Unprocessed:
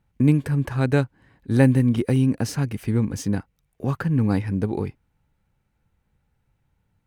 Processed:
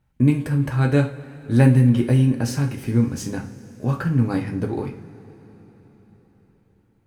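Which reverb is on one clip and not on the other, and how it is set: two-slope reverb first 0.35 s, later 4.7 s, from -22 dB, DRR 1.5 dB; gain -1 dB

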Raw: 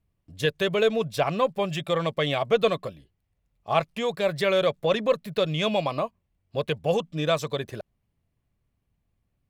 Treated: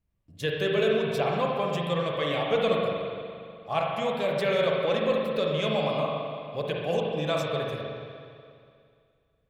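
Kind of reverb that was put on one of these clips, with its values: spring tank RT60 2.3 s, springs 41/59 ms, chirp 30 ms, DRR -2 dB; gain -5.5 dB

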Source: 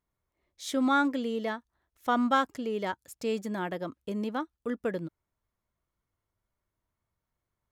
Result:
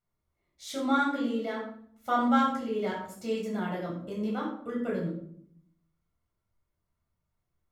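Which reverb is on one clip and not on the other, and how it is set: shoebox room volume 970 m³, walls furnished, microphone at 7.1 m; gain -9 dB

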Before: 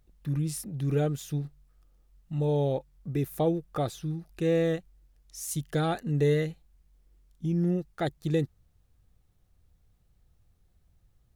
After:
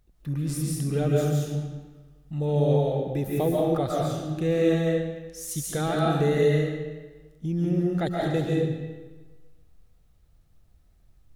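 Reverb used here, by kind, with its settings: digital reverb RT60 1.3 s, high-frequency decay 0.85×, pre-delay 0.1 s, DRR -3.5 dB

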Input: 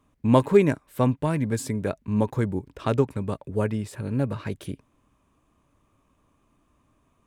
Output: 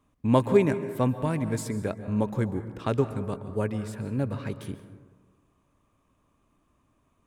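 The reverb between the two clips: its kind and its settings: plate-style reverb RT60 1.4 s, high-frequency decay 0.35×, pre-delay 0.12 s, DRR 11 dB; gain -3 dB

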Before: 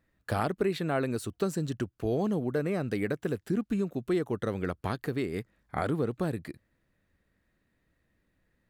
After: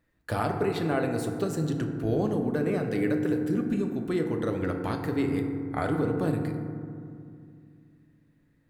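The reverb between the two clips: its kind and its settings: FDN reverb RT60 2.3 s, low-frequency decay 1.45×, high-frequency decay 0.3×, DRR 3 dB

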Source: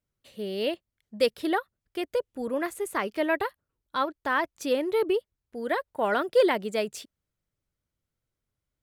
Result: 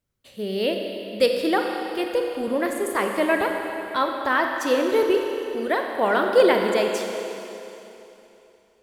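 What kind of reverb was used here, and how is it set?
Schroeder reverb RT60 3.1 s, combs from 31 ms, DRR 2.5 dB; gain +4 dB

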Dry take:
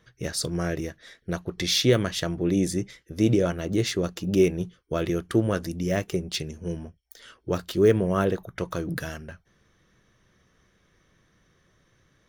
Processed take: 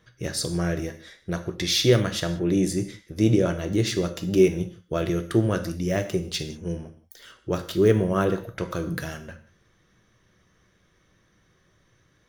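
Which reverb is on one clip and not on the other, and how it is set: non-linear reverb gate 0.21 s falling, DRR 7.5 dB

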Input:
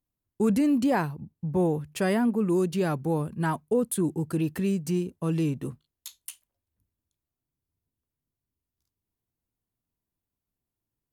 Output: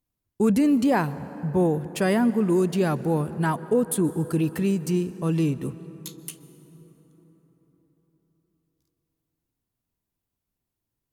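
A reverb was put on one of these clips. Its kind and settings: plate-style reverb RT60 4.9 s, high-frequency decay 0.45×, pre-delay 0.115 s, DRR 15.5 dB; gain +3 dB

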